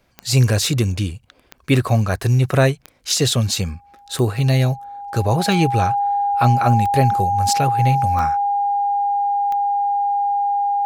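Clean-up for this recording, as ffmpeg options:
-af "adeclick=t=4,bandreject=f=810:w=30"

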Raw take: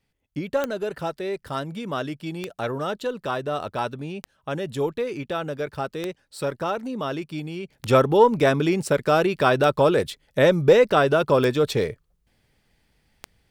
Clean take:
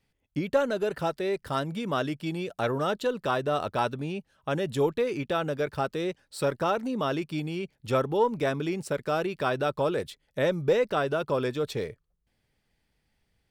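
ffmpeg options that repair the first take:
-af "adeclick=t=4,asetnsamples=n=441:p=0,asendcmd='7.7 volume volume -8.5dB',volume=0dB"

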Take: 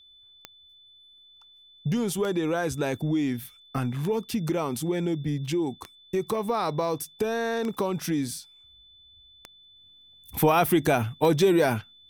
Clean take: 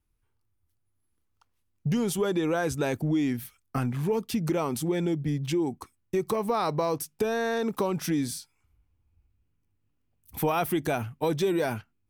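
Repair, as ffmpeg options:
-af "adeclick=t=4,bandreject=f=3.5k:w=30,asetnsamples=n=441:p=0,asendcmd='9.76 volume volume -5.5dB',volume=0dB"

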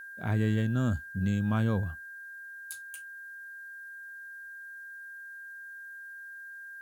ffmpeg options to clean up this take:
-af "bandreject=f=1.6k:w=30,agate=range=-21dB:threshold=-37dB"

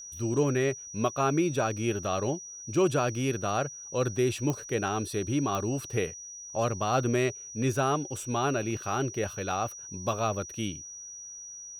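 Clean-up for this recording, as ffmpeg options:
-af "adeclick=t=4,bandreject=f=5.8k:w=30"

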